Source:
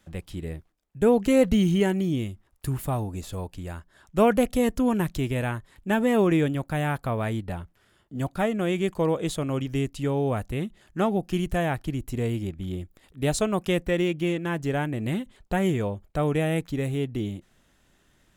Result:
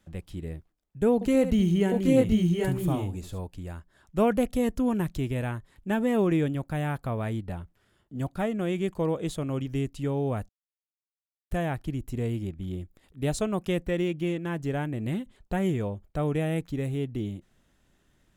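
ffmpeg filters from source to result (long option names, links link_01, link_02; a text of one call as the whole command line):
ffmpeg -i in.wav -filter_complex "[0:a]asettb=1/sr,asplit=3[link_01][link_02][link_03];[link_01]atrim=end=1.144[link_04];[link_02]atrim=start=1.14:end=3.4,asetpts=PTS-STARTPTS,afade=type=in:duration=0.004:curve=qsin,afade=type=out:start_time=2.256:duration=0.004:curve=qsin,aecho=1:1:71|776|799:0.266|0.631|0.708,atrim=end_sample=99666[link_05];[link_03]atrim=start=3.396[link_06];[link_04][link_05]acrossfade=duration=0.004:curve1=hsin:curve2=qsin[link_07];[link_07][link_06]acrossfade=duration=0.004:curve1=qsin:curve2=hsin,asplit=3[link_08][link_09][link_10];[link_08]atrim=end=10.49,asetpts=PTS-STARTPTS,afade=type=out:start_time=10.486:duration=0.004:curve=hsin[link_11];[link_09]atrim=start=10.49:end=11.51,asetpts=PTS-STARTPTS,volume=0[link_12];[link_10]atrim=start=11.51,asetpts=PTS-STARTPTS,afade=type=in:duration=0.004:curve=hsin[link_13];[link_11][link_12][link_13]concat=n=3:v=0:a=1,lowshelf=frequency=490:gain=4.5,volume=-6dB" out.wav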